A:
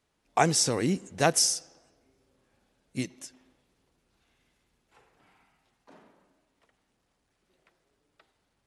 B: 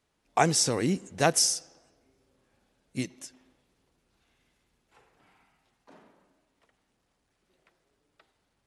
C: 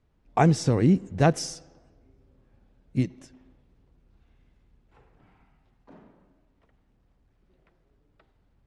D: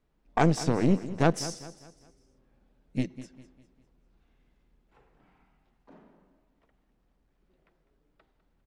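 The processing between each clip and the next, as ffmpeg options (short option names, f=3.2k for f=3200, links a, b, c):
-af anull
-af "aemphasis=mode=reproduction:type=riaa"
-af "aeval=exprs='(tanh(5.01*val(0)+0.75)-tanh(0.75))/5.01':c=same,equalizer=f=91:w=2.1:g=-15,aecho=1:1:201|402|603|804:0.178|0.0711|0.0285|0.0114,volume=2dB"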